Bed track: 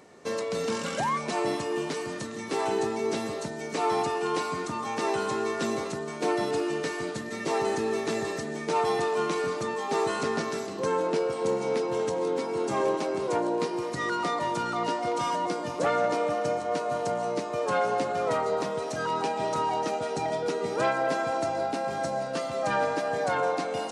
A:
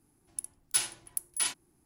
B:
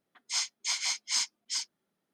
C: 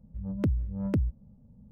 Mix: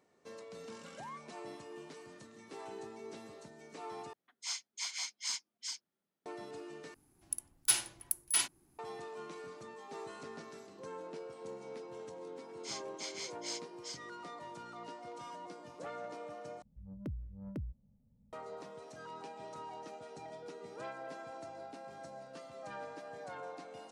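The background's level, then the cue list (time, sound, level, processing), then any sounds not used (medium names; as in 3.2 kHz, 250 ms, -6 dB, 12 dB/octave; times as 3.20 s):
bed track -19 dB
4.13 s: replace with B -8.5 dB
6.94 s: replace with A -0.5 dB
12.34 s: add B -12 dB + treble shelf 11 kHz -7.5 dB
16.62 s: replace with C -14.5 dB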